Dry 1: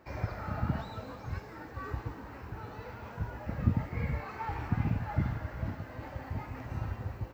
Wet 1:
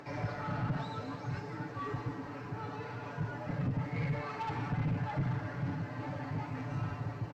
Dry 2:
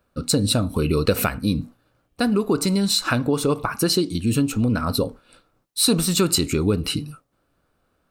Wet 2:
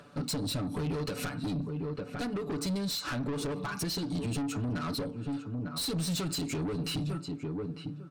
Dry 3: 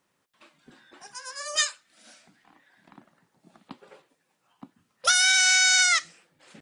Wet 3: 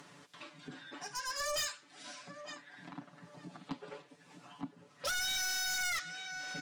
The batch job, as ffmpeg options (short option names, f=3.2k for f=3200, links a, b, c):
-filter_complex "[0:a]highpass=150,lowpass=6.7k,asplit=2[a][b];[b]adelay=900,lowpass=f=1.1k:p=1,volume=-16dB,asplit=2[c][d];[d]adelay=900,lowpass=f=1.1k:p=1,volume=0.15[e];[a][c][e]amix=inputs=3:normalize=0,acompressor=threshold=-29dB:ratio=5,aecho=1:1:6.9:0.97,acompressor=mode=upward:threshold=-45dB:ratio=2.5,asoftclip=type=tanh:threshold=-32.5dB,bass=f=250:g=6,treble=f=4k:g=2"